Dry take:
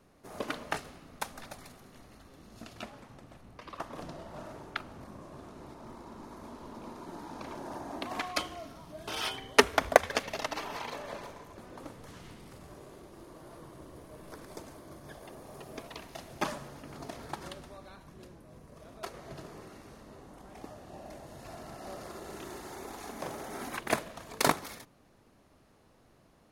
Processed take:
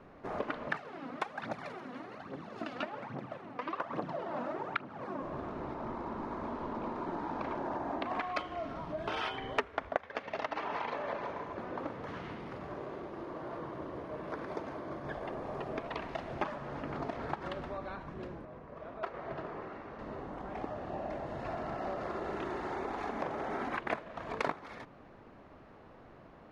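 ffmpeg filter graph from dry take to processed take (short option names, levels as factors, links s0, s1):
-filter_complex "[0:a]asettb=1/sr,asplit=3[s0][s1][s2];[s0]atrim=end=0.674[s3];[s1]atrim=start=0.67:end=5.22,asetpts=PTS-STARTPTS,afade=t=in:d=0.004:c=qsin,afade=t=out:st=4.546:d=0.004:c=qsin,highpass=f=130:w=0.5412,highpass=f=130:w=1.3066,aphaser=in_gain=1:out_gain=1:delay=4.2:decay=0.61:speed=1.2:type=triangular[s4];[s2]atrim=start=5.216[s5];[s3][s4]acrossfade=d=0.004:c1=hsin:c2=qsin[s6];[s6][s5]acrossfade=d=0.004:c1=qsin:c2=hsin,asettb=1/sr,asplit=3[s7][s8][s9];[s7]atrim=end=9.884[s10];[s8]atrim=start=9.88:end=15.05,asetpts=PTS-STARTPTS,afade=t=in:d=0.004:c=qsin,afade=t=out:st=5.166:d=0.004:c=qsin,highpass=f=110:p=1,bandreject=f=7800:w=5.9[s11];[s9]atrim=start=15.046[s12];[s10][s11]acrossfade=d=0.004:c1=hsin:c2=qsin[s13];[s13][s12]acrossfade=d=0.004:c1=qsin:c2=hsin,asettb=1/sr,asplit=3[s14][s15][s16];[s14]atrim=end=18.454[s17];[s15]atrim=start=18.45:end=19.99,asetpts=PTS-STARTPTS,afade=t=in:d=0.004:c=qsin,afade=t=out:st=1.536:d=0.004:c=qsin,lowpass=f=2300:p=1,lowshelf=f=390:g=-7.5[s18];[s16]atrim=start=19.986[s19];[s17][s18]acrossfade=d=0.004:c1=hsin:c2=qsin[s20];[s20][s19]acrossfade=d=0.004:c1=qsin:c2=hsin,lowpass=2000,lowshelf=f=300:g=-5.5,acompressor=threshold=0.00562:ratio=4,volume=3.55"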